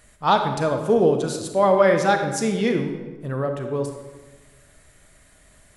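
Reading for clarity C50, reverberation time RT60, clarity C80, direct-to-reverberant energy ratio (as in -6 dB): 6.0 dB, 1.3 s, 8.5 dB, 5.0 dB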